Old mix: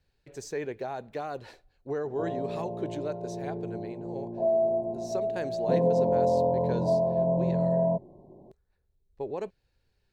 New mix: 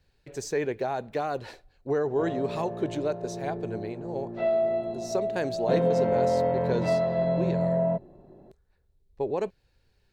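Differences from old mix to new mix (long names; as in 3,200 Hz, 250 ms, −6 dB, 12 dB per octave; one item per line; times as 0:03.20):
speech +5.5 dB
background: remove linear-phase brick-wall low-pass 1,100 Hz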